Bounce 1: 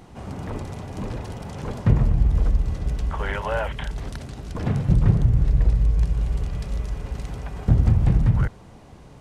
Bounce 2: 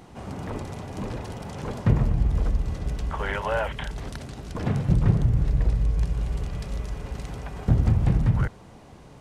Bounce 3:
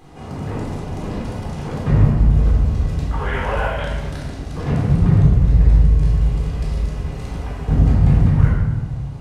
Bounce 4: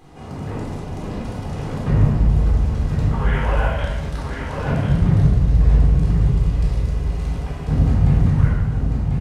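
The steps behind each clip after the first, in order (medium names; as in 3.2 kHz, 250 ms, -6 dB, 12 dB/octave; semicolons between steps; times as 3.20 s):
bass shelf 110 Hz -5 dB
simulated room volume 910 m³, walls mixed, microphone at 3.9 m; trim -3 dB
delay 1043 ms -5.5 dB; trim -2 dB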